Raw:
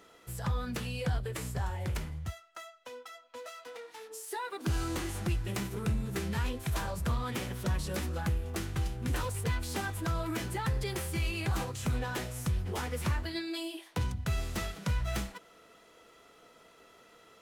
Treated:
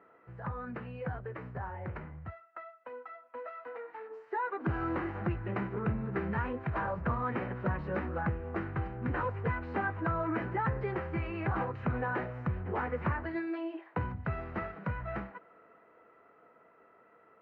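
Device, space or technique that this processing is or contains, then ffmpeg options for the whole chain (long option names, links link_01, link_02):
action camera in a waterproof case: -af "highpass=90,lowpass=frequency=1800:width=0.5412,lowpass=frequency=1800:width=1.3066,lowshelf=frequency=380:gain=-5.5,bandreject=frequency=3400:width=7.3,dynaudnorm=framelen=270:gausssize=21:maxgain=5.5dB" -ar 48000 -c:a aac -b:a 64k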